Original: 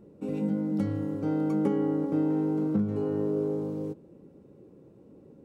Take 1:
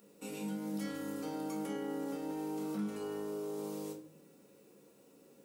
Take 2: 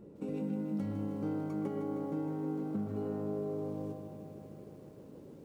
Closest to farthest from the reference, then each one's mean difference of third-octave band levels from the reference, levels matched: 2, 1; 5.0, 11.0 decibels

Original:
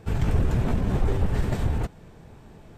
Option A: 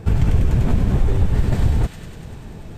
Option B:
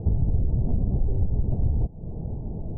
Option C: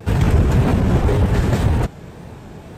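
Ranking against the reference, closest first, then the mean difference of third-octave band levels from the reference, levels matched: C, A, B; 1.5, 3.5, 12.5 decibels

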